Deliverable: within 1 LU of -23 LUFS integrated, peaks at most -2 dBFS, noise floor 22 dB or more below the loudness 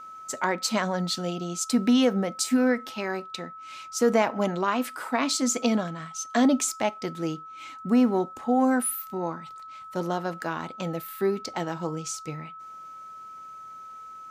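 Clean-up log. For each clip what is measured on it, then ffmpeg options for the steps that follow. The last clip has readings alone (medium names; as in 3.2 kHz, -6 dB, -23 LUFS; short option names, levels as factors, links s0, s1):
steady tone 1.3 kHz; tone level -40 dBFS; loudness -26.5 LUFS; peak level -10.0 dBFS; loudness target -23.0 LUFS
-> -af "bandreject=f=1300:w=30"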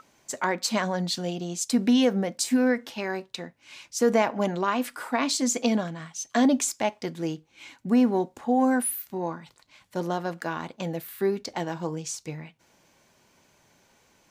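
steady tone not found; loudness -26.5 LUFS; peak level -10.0 dBFS; loudness target -23.0 LUFS
-> -af "volume=1.5"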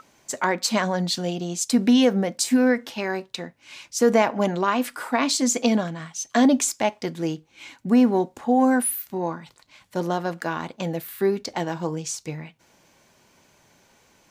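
loudness -23.0 LUFS; peak level -6.0 dBFS; noise floor -60 dBFS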